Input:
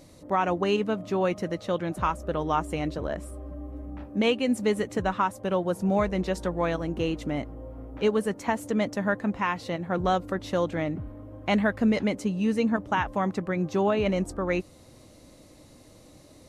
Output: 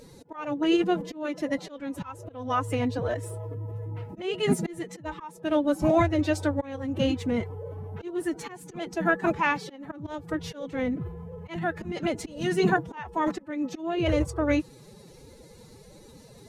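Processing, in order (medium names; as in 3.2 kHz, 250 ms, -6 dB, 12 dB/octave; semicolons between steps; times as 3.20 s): coarse spectral quantiser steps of 15 dB; slow attack 398 ms; formant-preserving pitch shift +8.5 st; trim +3.5 dB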